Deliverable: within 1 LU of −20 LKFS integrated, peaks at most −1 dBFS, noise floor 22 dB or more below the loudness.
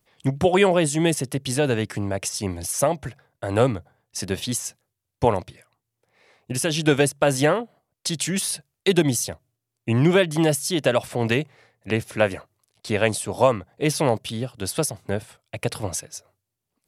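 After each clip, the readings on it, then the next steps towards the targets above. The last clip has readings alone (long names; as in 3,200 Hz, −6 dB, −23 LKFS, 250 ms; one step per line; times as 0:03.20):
integrated loudness −23.0 LKFS; sample peak −3.0 dBFS; target loudness −20.0 LKFS
→ level +3 dB
brickwall limiter −1 dBFS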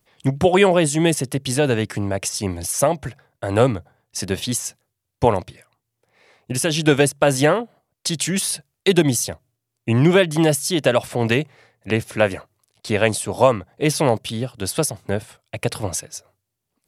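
integrated loudness −20.0 LKFS; sample peak −1.0 dBFS; background noise floor −79 dBFS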